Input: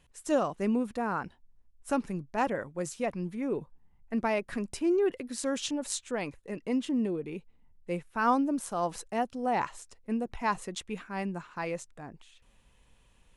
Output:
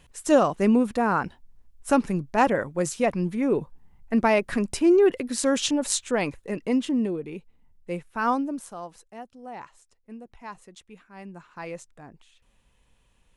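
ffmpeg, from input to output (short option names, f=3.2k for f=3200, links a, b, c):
-af "volume=17.5dB,afade=t=out:st=6.28:d=1:silence=0.473151,afade=t=out:st=8.26:d=0.65:silence=0.237137,afade=t=in:st=11.12:d=0.59:silence=0.354813"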